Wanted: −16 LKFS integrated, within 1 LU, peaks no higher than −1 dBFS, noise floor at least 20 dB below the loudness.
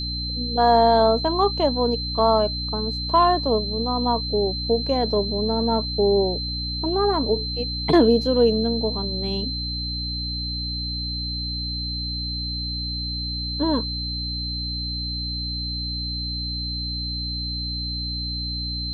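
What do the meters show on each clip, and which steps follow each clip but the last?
mains hum 60 Hz; hum harmonics up to 300 Hz; level of the hum −28 dBFS; interfering tone 4,100 Hz; level of the tone −28 dBFS; integrated loudness −23.0 LKFS; sample peak −5.0 dBFS; target loudness −16.0 LKFS
→ hum removal 60 Hz, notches 5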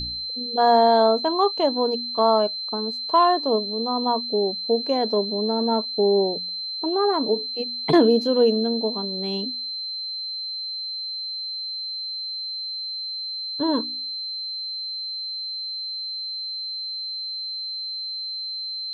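mains hum none found; interfering tone 4,100 Hz; level of the tone −28 dBFS
→ notch filter 4,100 Hz, Q 30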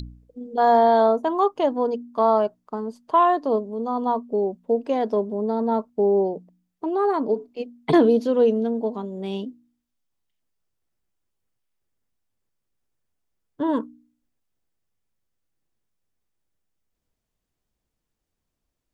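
interfering tone none found; integrated loudness −22.0 LKFS; sample peak −6.0 dBFS; target loudness −16.0 LKFS
→ level +6 dB
brickwall limiter −1 dBFS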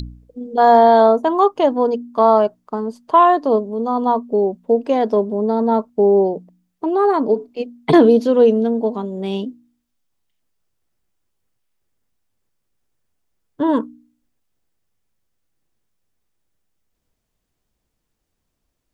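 integrated loudness −16.0 LKFS; sample peak −1.0 dBFS; background noise floor −75 dBFS

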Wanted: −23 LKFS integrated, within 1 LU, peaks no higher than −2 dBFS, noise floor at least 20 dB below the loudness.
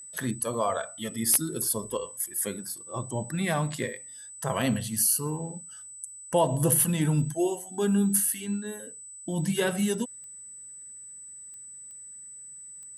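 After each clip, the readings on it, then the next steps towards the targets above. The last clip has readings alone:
number of clicks 5; interfering tone 8,000 Hz; level of the tone −42 dBFS; integrated loudness −27.5 LKFS; sample peak −8.5 dBFS; target loudness −23.0 LKFS
→ click removal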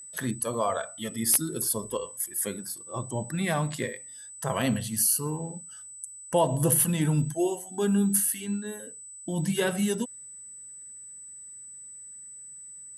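number of clicks 0; interfering tone 8,000 Hz; level of the tone −42 dBFS
→ notch filter 8,000 Hz, Q 30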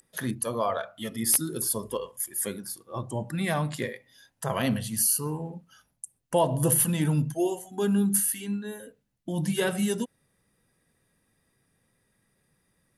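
interfering tone none found; integrated loudness −27.5 LKFS; sample peak −8.0 dBFS; target loudness −23.0 LKFS
→ level +4.5 dB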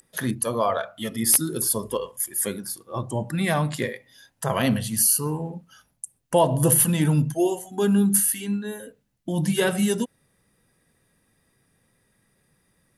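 integrated loudness −23.0 LKFS; sample peak −3.5 dBFS; background noise floor −69 dBFS

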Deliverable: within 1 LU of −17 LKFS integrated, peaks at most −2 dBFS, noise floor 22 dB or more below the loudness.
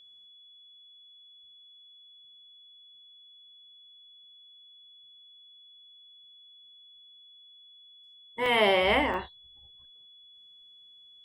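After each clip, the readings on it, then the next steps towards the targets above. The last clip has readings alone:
number of dropouts 2; longest dropout 1.4 ms; interfering tone 3,400 Hz; level of the tone −52 dBFS; integrated loudness −25.0 LKFS; sample peak −11.5 dBFS; target loudness −17.0 LKFS
→ repair the gap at 0:08.46/0:09.14, 1.4 ms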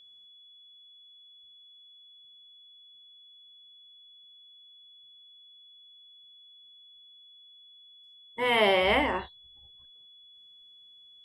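number of dropouts 0; interfering tone 3,400 Hz; level of the tone −52 dBFS
→ notch filter 3,400 Hz, Q 30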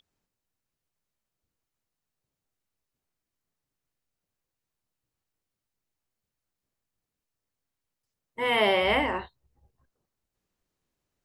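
interfering tone none found; integrated loudness −25.0 LKFS; sample peak −12.0 dBFS; target loudness −17.0 LKFS
→ level +8 dB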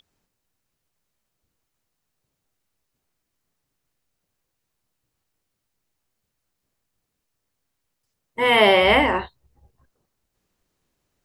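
integrated loudness −17.0 LKFS; sample peak −4.0 dBFS; background noise floor −79 dBFS

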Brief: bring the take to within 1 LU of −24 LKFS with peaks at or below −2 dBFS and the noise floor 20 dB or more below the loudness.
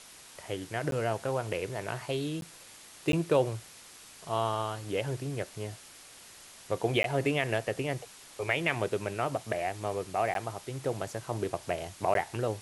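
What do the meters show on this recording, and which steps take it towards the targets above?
number of dropouts 6; longest dropout 12 ms; background noise floor −52 dBFS; target noise floor −53 dBFS; integrated loudness −32.5 LKFS; sample peak −11.5 dBFS; target loudness −24.0 LKFS
→ repair the gap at 0:00.91/0:02.41/0:03.12/0:07.03/0:10.34/0:12.14, 12 ms
broadband denoise 6 dB, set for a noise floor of −52 dBFS
level +8.5 dB

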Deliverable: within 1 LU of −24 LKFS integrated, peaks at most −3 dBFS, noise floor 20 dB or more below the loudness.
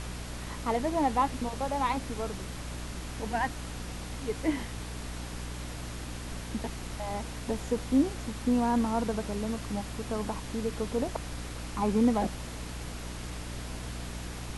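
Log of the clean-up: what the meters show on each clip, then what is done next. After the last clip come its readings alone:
mains hum 60 Hz; hum harmonics up to 300 Hz; level of the hum −38 dBFS; background noise floor −40 dBFS; target noise floor −53 dBFS; integrated loudness −32.5 LKFS; sample peak −14.5 dBFS; target loudness −24.0 LKFS
→ mains-hum notches 60/120/180/240/300 Hz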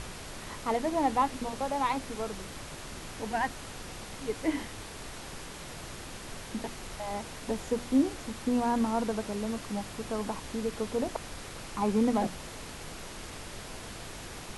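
mains hum none found; background noise floor −43 dBFS; target noise floor −54 dBFS
→ noise reduction from a noise print 11 dB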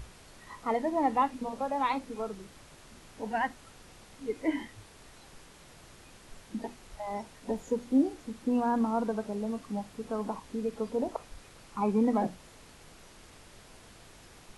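background noise floor −54 dBFS; integrated loudness −32.5 LKFS; sample peak −15.0 dBFS; target loudness −24.0 LKFS
→ level +8.5 dB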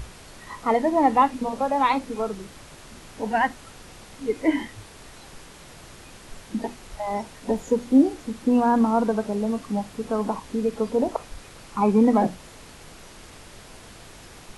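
integrated loudness −24.0 LKFS; sample peak −6.5 dBFS; background noise floor −46 dBFS

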